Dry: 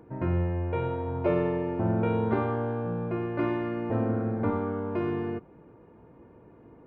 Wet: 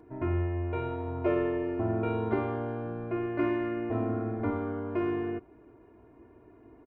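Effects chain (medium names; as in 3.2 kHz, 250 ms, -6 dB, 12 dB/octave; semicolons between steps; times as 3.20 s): comb 2.9 ms, depth 73%; trim -4 dB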